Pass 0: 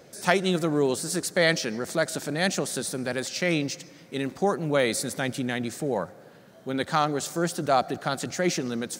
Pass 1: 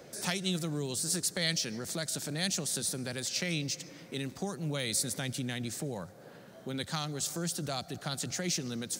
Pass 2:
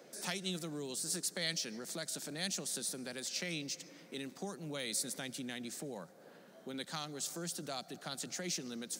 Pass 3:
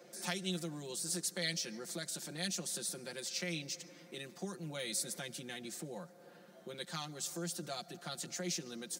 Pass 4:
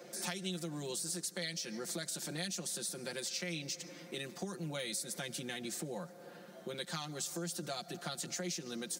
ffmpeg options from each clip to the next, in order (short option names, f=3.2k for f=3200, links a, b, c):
-filter_complex "[0:a]acrossover=split=160|3000[a][b][c];[b]acompressor=threshold=-40dB:ratio=4[d];[a][d][c]amix=inputs=3:normalize=0"
-af "highpass=f=180:w=0.5412,highpass=f=180:w=1.3066,volume=-5.5dB"
-af "aecho=1:1:5.7:0.87,volume=-3dB"
-af "acompressor=threshold=-42dB:ratio=5,volume=5.5dB"